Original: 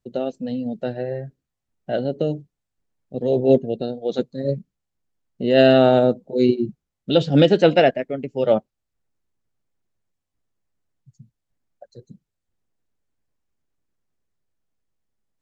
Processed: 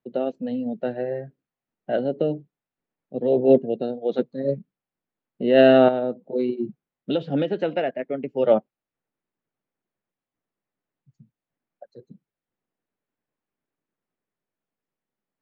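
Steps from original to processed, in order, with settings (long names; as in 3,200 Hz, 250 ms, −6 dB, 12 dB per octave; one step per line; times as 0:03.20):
three-way crossover with the lows and the highs turned down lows −19 dB, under 150 Hz, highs −24 dB, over 3,300 Hz
0:05.88–0:08.23: downward compressor 10 to 1, threshold −20 dBFS, peak gain reduction 11.5 dB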